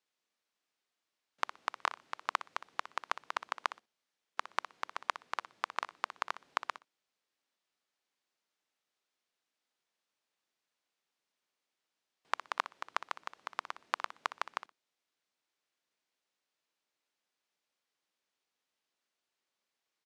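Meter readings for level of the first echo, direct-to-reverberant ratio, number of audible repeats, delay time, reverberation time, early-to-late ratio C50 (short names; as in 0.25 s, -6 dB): -13.5 dB, none, 2, 61 ms, none, none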